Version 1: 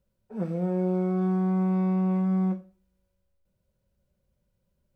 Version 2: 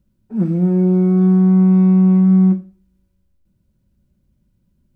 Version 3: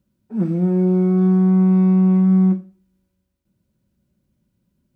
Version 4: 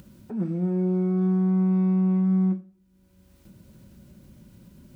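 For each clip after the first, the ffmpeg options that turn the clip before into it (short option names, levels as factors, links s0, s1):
-af "lowshelf=f=380:t=q:w=3:g=7.5,volume=1.58"
-af "highpass=f=180:p=1"
-af "acompressor=mode=upward:threshold=0.0891:ratio=2.5,volume=0.422"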